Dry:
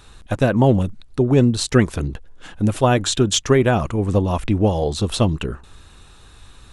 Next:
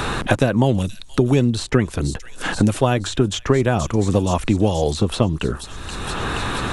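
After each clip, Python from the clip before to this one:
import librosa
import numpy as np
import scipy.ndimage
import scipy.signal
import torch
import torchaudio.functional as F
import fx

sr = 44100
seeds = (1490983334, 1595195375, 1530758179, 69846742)

y = fx.echo_wet_highpass(x, sr, ms=476, feedback_pct=53, hz=4900.0, wet_db=-11.0)
y = fx.band_squash(y, sr, depth_pct=100)
y = y * 10.0 ** (-1.0 / 20.0)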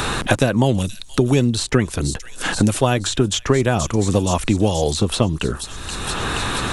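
y = fx.high_shelf(x, sr, hz=3500.0, db=7.5)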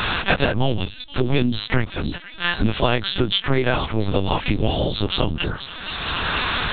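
y = fx.freq_snap(x, sr, grid_st=2)
y = fx.lpc_vocoder(y, sr, seeds[0], excitation='pitch_kept', order=8)
y = y * 10.0 ** (-1.5 / 20.0)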